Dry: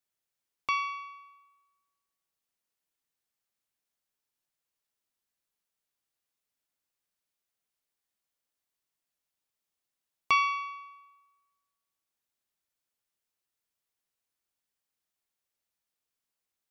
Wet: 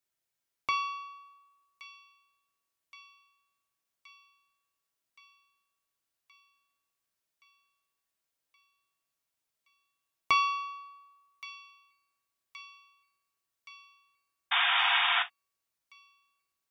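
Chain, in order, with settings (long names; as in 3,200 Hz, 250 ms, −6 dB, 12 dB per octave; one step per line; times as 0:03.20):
delay with a high-pass on its return 1,122 ms, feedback 69%, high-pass 2,100 Hz, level −14 dB
sound drawn into the spectrogram noise, 0:14.51–0:15.23, 690–3,700 Hz −27 dBFS
reverb whose tail is shaped and stops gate 80 ms falling, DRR 5.5 dB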